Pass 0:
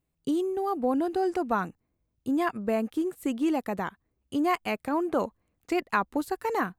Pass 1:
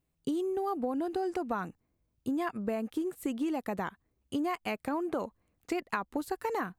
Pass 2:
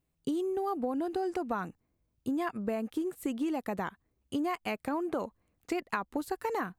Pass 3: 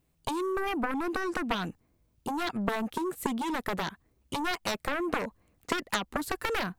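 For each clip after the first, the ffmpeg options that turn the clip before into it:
-af "acompressor=threshold=0.0355:ratio=6"
-af anull
-af "aeval=exprs='0.15*(cos(1*acos(clip(val(0)/0.15,-1,1)))-cos(1*PI/2))+0.0596*(cos(7*acos(clip(val(0)/0.15,-1,1)))-cos(7*PI/2))':c=same,volume=1.33"

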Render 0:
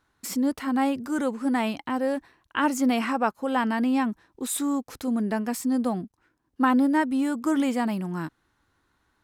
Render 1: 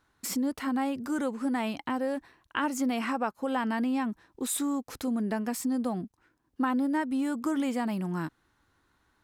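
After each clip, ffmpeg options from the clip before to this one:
-af "acompressor=threshold=0.0398:ratio=2.5"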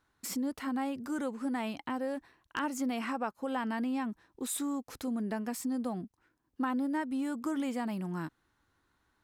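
-af "aeval=exprs='0.126*(abs(mod(val(0)/0.126+3,4)-2)-1)':c=same,volume=0.596"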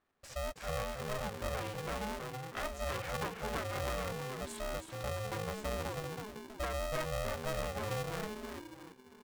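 -filter_complex "[0:a]asplit=7[s0][s1][s2][s3][s4][s5][s6];[s1]adelay=322,afreqshift=-83,volume=0.631[s7];[s2]adelay=644,afreqshift=-166,volume=0.279[s8];[s3]adelay=966,afreqshift=-249,volume=0.122[s9];[s4]adelay=1288,afreqshift=-332,volume=0.0537[s10];[s5]adelay=1610,afreqshift=-415,volume=0.0237[s11];[s6]adelay=1932,afreqshift=-498,volume=0.0104[s12];[s0][s7][s8][s9][s10][s11][s12]amix=inputs=7:normalize=0,adynamicsmooth=sensitivity=8:basefreq=3400,aeval=exprs='val(0)*sgn(sin(2*PI*320*n/s))':c=same,volume=0.562"

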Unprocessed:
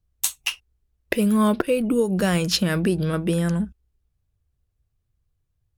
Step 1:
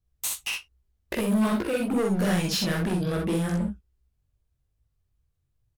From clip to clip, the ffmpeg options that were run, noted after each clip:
-af "flanger=delay=17:depth=5.8:speed=2.5,asoftclip=type=hard:threshold=0.0631,aecho=1:1:46|61:0.531|0.531"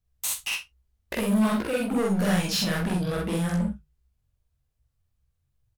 -filter_complex "[0:a]equalizer=f=350:w=3.1:g=-7,bandreject=f=50:t=h:w=6,bandreject=f=100:t=h:w=6,bandreject=f=150:t=h:w=6,asplit=2[s0][s1];[s1]adelay=46,volume=0.316[s2];[s0][s2]amix=inputs=2:normalize=0"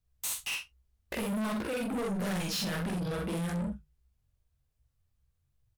-af "asoftclip=type=tanh:threshold=0.0376,volume=0.841"

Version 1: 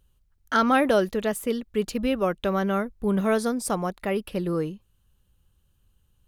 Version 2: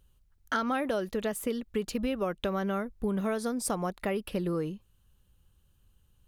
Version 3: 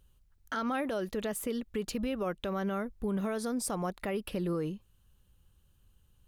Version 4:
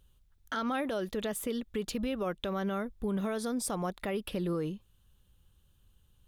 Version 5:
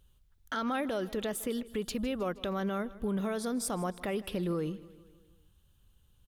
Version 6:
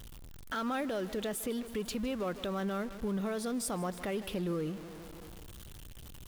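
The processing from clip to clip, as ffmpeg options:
-af "acompressor=threshold=0.0447:ratio=6"
-af "alimiter=level_in=1.06:limit=0.0631:level=0:latency=1:release=54,volume=0.944"
-af "equalizer=f=3500:w=5.7:g=6.5"
-af "aecho=1:1:157|314|471|628|785:0.112|0.0617|0.0339|0.0187|0.0103"
-af "aeval=exprs='val(0)+0.5*0.01*sgn(val(0))':c=same,volume=0.708"

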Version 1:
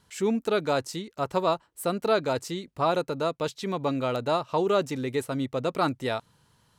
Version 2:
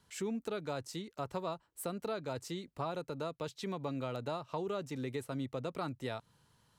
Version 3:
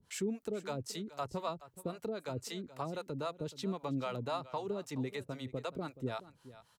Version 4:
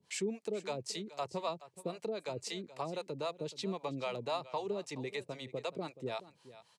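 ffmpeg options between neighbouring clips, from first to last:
-filter_complex "[0:a]acrossover=split=150[s0][s1];[s1]acompressor=threshold=0.0251:ratio=3[s2];[s0][s2]amix=inputs=2:normalize=0,volume=0.531"
-filter_complex "[0:a]acrossover=split=500[s0][s1];[s0]aeval=exprs='val(0)*(1-1/2+1/2*cos(2*PI*3.8*n/s))':c=same[s2];[s1]aeval=exprs='val(0)*(1-1/2-1/2*cos(2*PI*3.8*n/s))':c=same[s3];[s2][s3]amix=inputs=2:normalize=0,aecho=1:1:425:0.15,volume=1.78"
-af "highpass=190,equalizer=f=260:t=q:w=4:g=-8,equalizer=f=1400:t=q:w=4:g=-9,equalizer=f=2400:t=q:w=4:g=4,equalizer=f=4500:t=q:w=4:g=3,lowpass=f=9800:w=0.5412,lowpass=f=9800:w=1.3066,volume=1.26"

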